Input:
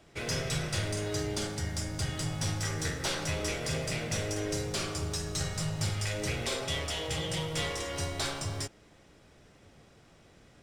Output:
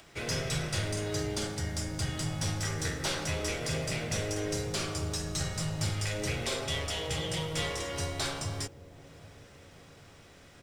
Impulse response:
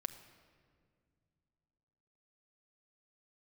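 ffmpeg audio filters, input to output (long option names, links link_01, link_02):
-filter_complex "[0:a]acrossover=split=820[link_01][link_02];[link_01]aecho=1:1:780|1560|2340|3120|3900:0.141|0.0819|0.0475|0.0276|0.016[link_03];[link_02]acompressor=mode=upward:threshold=-51dB:ratio=2.5[link_04];[link_03][link_04]amix=inputs=2:normalize=0,acrusher=bits=11:mix=0:aa=0.000001"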